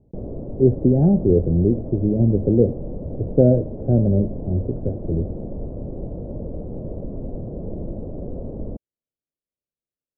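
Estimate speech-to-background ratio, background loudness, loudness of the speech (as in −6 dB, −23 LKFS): 13.0 dB, −32.5 LKFS, −19.5 LKFS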